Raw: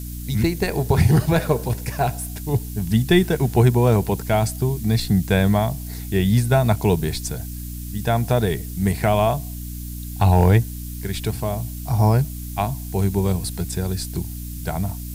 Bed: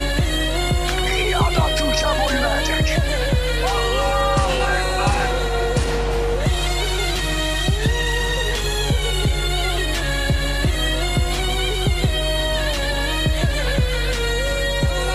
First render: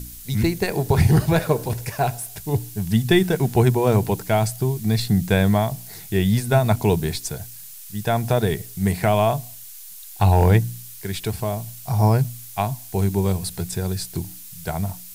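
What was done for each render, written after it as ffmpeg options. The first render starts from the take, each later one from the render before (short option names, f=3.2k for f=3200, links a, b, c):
-af "bandreject=f=60:t=h:w=4,bandreject=f=120:t=h:w=4,bandreject=f=180:t=h:w=4,bandreject=f=240:t=h:w=4,bandreject=f=300:t=h:w=4"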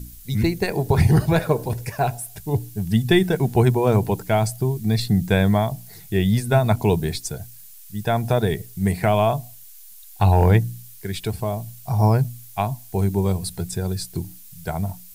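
-af "afftdn=nr=7:nf=-39"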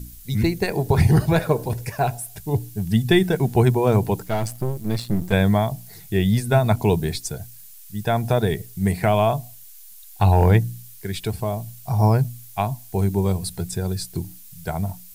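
-filter_complex "[0:a]asettb=1/sr,asplit=3[a][b][c];[a]atrim=end=4.244[d];[b]atrim=start=4.24:end=5.33,asetpts=PTS-STARTPTS,afade=t=in:d=0.004:c=qsin,afade=t=out:st=1.086:d=0.004:c=qsin,aeval=exprs='if(lt(val(0),0),0.251*val(0),val(0))':c=same[e];[c]atrim=start=5.326[f];[d][e]acrossfade=d=0.004:c1=hsin:c2=qsin[g];[g][f]acrossfade=d=0.004:c1=qsin:c2=hsin"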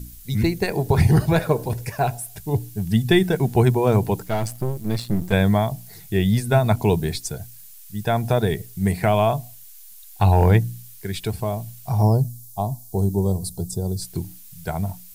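-filter_complex "[0:a]asplit=3[a][b][c];[a]afade=t=out:st=12.02:d=0.02[d];[b]asuperstop=centerf=2000:order=4:qfactor=0.51,afade=t=in:st=12.02:d=0.02,afade=t=out:st=14.01:d=0.02[e];[c]afade=t=in:st=14.01:d=0.02[f];[d][e][f]amix=inputs=3:normalize=0"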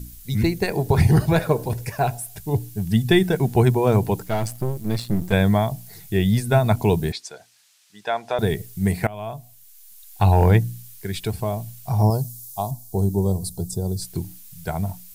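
-filter_complex "[0:a]asettb=1/sr,asplit=3[a][b][c];[a]atrim=end=7.124[d];[b]atrim=start=7.12:end=8.39,asetpts=PTS-STARTPTS,afade=t=in:d=0.004:c=qsin,afade=t=out:st=1.266:d=0.004:c=qsin,highpass=560,lowpass=5k[e];[c]atrim=start=8.386[f];[d][e]acrossfade=d=0.004:c1=hsin:c2=qsin[g];[g][f]acrossfade=d=0.004:c1=qsin:c2=hsin,asettb=1/sr,asplit=3[h][i][j];[h]atrim=end=12.104[k];[i]atrim=start=12.1:end=12.71,asetpts=PTS-STARTPTS,afade=t=in:d=0.004:c=qsin,afade=t=out:st=0.606:d=0.004:c=qsin,tiltshelf=f=780:g=-5.5[l];[j]atrim=start=12.706[m];[k][l]acrossfade=d=0.004:c1=hsin:c2=qsin[n];[n][m]acrossfade=d=0.004:c1=qsin:c2=hsin,asplit=2[o][p];[o]atrim=end=9.07,asetpts=PTS-STARTPTS,afade=t=out:st=9.066:d=0.004:c=hsin:silence=0.0891251[q];[p]atrim=start=9.07,asetpts=PTS-STARTPTS,afade=t=in:d=1.16:silence=0.0891251[r];[q][r]concat=n=2:v=0:a=1"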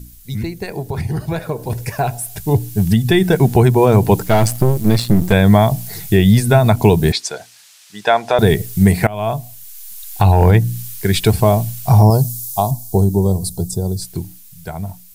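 -af "alimiter=limit=-14.5dB:level=0:latency=1:release=252,dynaudnorm=f=280:g=17:m=16.5dB"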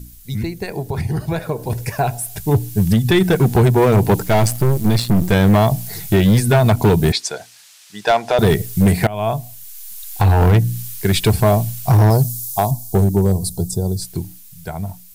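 -af "asoftclip=type=hard:threshold=-8dB"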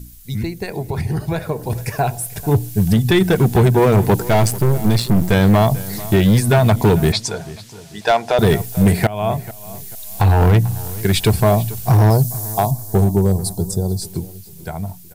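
-filter_complex "[0:a]asplit=2[a][b];[b]adelay=441,lowpass=f=4.4k:p=1,volume=-17.5dB,asplit=2[c][d];[d]adelay=441,lowpass=f=4.4k:p=1,volume=0.35,asplit=2[e][f];[f]adelay=441,lowpass=f=4.4k:p=1,volume=0.35[g];[a][c][e][g]amix=inputs=4:normalize=0"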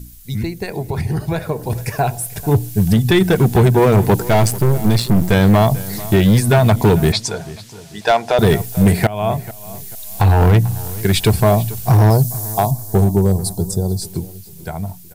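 -af "volume=1dB"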